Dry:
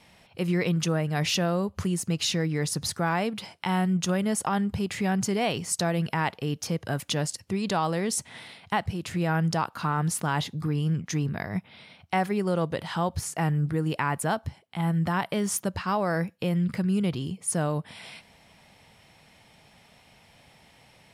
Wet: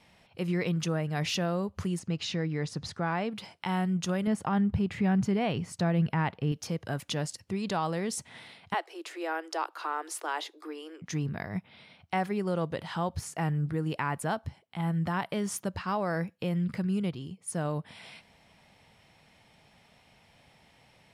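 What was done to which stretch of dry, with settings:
1.99–3.31 air absorption 86 m
4.27–6.52 tone controls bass +7 dB, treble -10 dB
8.74–11.02 steep high-pass 310 Hz 96 dB/oct
16.87–17.65 upward expander, over -38 dBFS
whole clip: high shelf 7600 Hz -6 dB; gain -4 dB

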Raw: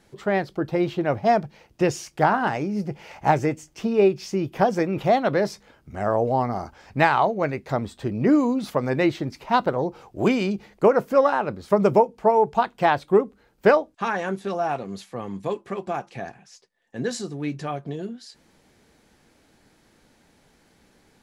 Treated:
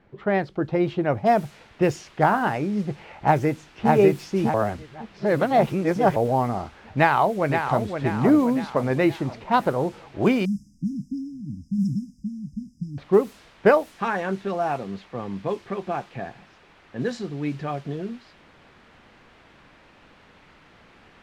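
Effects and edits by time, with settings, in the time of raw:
1.26 noise floor step -64 dB -45 dB
3.19–3.89 echo throw 0.6 s, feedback 45%, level -1.5 dB
4.54–6.16 reverse
6.97–7.94 echo throw 0.52 s, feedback 50%, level -6.5 dB
10.45–12.98 brick-wall FIR band-stop 300–4900 Hz
whole clip: low-pass opened by the level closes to 2200 Hz, open at -17 dBFS; tone controls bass +2 dB, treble -7 dB

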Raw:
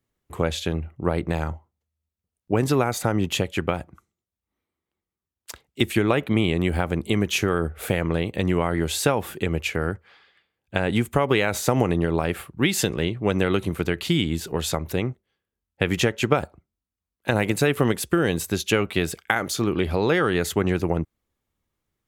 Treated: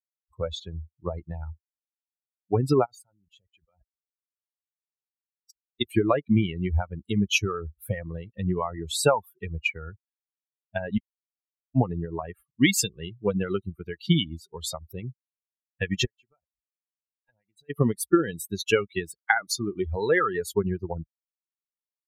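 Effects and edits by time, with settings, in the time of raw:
2.85–5.85 level quantiser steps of 18 dB
10.98–11.75 mute
16.05–17.7 compressor 2.5:1, threshold -41 dBFS
whole clip: per-bin expansion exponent 3; LPF 12000 Hz 12 dB/oct; gain +6 dB

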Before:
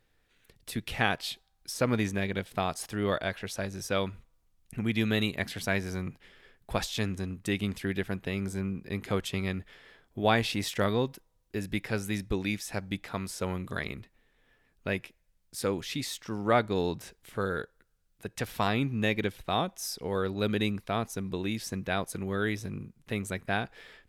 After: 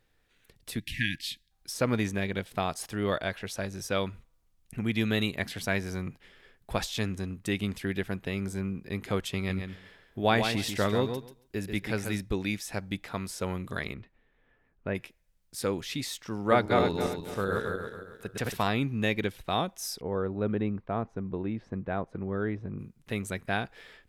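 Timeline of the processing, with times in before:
0.79–1.51 spectral delete 340–1600 Hz
9.36–12.2 feedback echo 0.138 s, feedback 15%, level -7 dB
13.93–14.94 LPF 3600 Hz -> 1500 Hz
16.38–18.63 regenerating reverse delay 0.138 s, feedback 55%, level -2 dB
20.01–22.79 LPF 1200 Hz

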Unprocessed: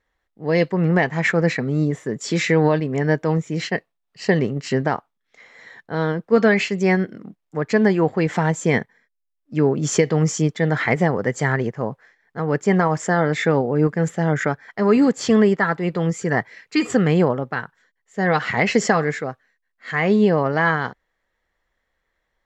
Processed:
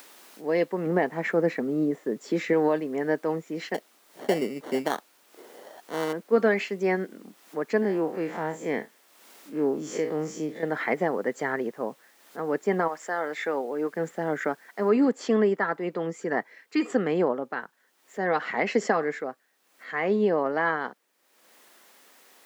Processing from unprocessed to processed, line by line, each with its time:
0.86–2.53 tilt shelf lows +4 dB, about 900 Hz
3.74–6.13 sample-rate reducer 2500 Hz
7.82–10.63 time blur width 86 ms
12.87–13.95 HPF 1100 Hz -> 440 Hz 6 dB/oct
14.89 noise floor step -50 dB -62 dB
whole clip: HPF 240 Hz 24 dB/oct; high shelf 2400 Hz -9 dB; upward compressor, threshold -36 dBFS; gain -4.5 dB

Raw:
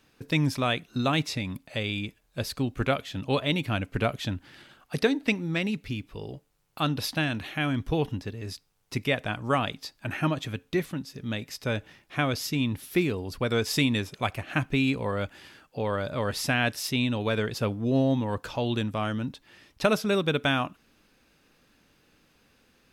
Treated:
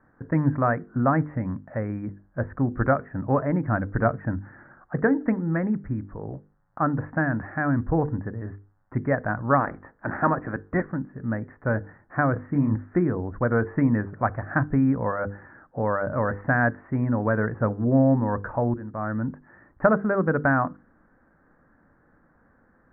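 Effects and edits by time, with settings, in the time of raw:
9.59–10.83 spectral limiter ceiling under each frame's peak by 14 dB
12.33–12.78 doubler 28 ms -5 dB
18.74–19.3 fade in, from -21.5 dB
whole clip: steep low-pass 1800 Hz 72 dB/oct; bell 410 Hz -5.5 dB 0.29 oct; notches 50/100/150/200/250/300/350/400/450/500 Hz; gain +5.5 dB

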